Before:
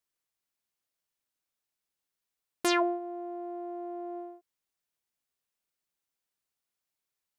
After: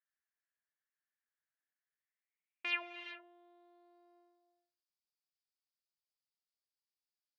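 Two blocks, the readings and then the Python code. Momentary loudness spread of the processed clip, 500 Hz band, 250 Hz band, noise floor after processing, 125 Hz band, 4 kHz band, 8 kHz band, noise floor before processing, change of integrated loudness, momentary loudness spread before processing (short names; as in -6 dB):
14 LU, -24.0 dB, -26.5 dB, under -85 dBFS, n/a, -7.5 dB, under -30 dB, under -85 dBFS, -6.5 dB, 14 LU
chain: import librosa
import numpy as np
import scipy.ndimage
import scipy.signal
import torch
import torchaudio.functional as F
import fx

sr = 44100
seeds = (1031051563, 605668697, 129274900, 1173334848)

y = fx.filter_sweep_bandpass(x, sr, from_hz=1700.0, to_hz=4900.0, start_s=1.86, end_s=4.12, q=7.1)
y = fx.air_absorb(y, sr, metres=200.0)
y = fx.rev_gated(y, sr, seeds[0], gate_ms=430, shape='rising', drr_db=8.5)
y = y * librosa.db_to_amplitude(7.0)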